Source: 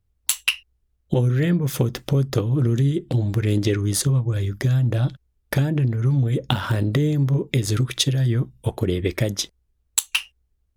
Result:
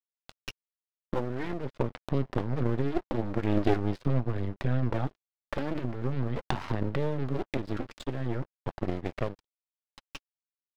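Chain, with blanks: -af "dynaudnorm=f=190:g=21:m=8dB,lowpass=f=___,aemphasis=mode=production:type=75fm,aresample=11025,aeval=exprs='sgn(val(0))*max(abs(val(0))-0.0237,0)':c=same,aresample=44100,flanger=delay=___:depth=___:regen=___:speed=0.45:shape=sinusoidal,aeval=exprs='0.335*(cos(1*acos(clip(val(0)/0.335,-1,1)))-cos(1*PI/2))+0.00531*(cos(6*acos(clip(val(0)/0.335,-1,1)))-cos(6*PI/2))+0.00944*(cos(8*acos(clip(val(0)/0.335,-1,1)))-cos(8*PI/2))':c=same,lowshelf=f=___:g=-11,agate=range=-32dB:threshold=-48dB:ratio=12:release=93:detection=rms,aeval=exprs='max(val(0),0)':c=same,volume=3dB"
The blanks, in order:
1200, 1, 2.7, -34, 150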